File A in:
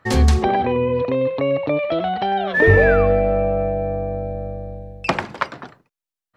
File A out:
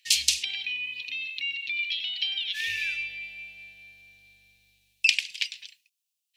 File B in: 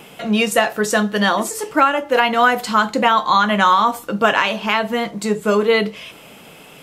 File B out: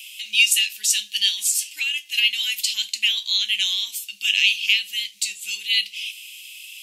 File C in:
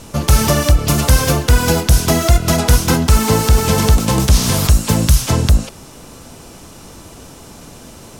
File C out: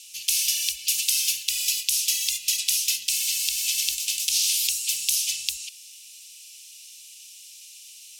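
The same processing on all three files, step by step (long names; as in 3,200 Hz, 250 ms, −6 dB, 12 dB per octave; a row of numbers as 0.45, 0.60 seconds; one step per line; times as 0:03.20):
elliptic high-pass filter 2,600 Hz, stop band 50 dB
normalise the peak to −3 dBFS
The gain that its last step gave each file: +9.0, +7.5, −1.5 decibels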